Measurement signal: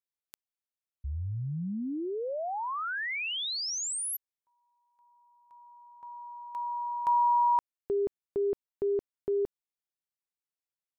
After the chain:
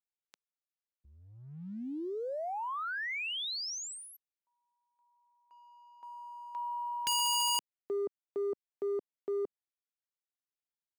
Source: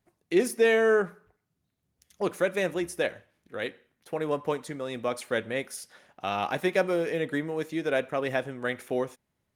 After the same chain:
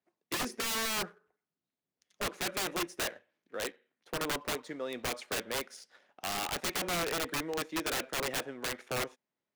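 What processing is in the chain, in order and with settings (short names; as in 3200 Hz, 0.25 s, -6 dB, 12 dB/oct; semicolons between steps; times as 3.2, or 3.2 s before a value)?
three-band isolator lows -22 dB, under 200 Hz, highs -22 dB, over 7200 Hz; sample leveller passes 1; wrapped overs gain 21 dB; gain -6.5 dB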